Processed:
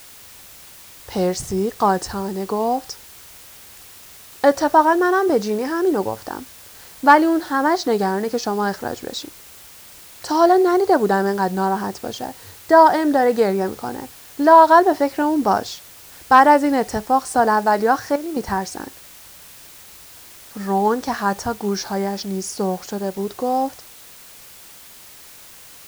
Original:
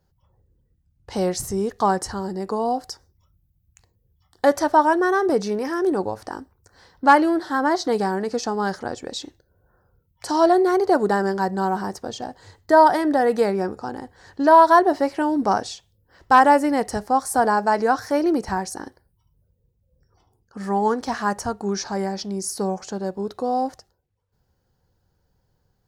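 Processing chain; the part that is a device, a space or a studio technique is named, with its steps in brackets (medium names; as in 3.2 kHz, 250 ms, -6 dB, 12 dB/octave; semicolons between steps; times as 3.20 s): worn cassette (low-pass 7.9 kHz; wow and flutter; level dips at 14.15/18.16 s, 202 ms -11 dB; white noise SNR 23 dB); trim +2.5 dB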